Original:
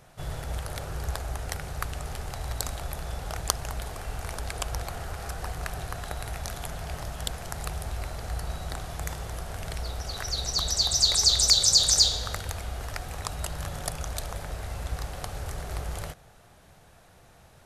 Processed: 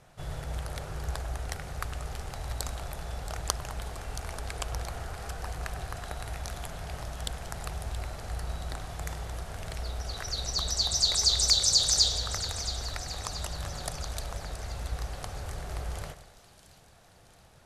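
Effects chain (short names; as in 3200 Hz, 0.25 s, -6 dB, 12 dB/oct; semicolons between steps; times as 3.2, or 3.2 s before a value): Bessel low-pass 11000 Hz, order 2; on a send: split-band echo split 2700 Hz, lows 0.1 s, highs 0.675 s, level -12.5 dB; on the sum: gain -3 dB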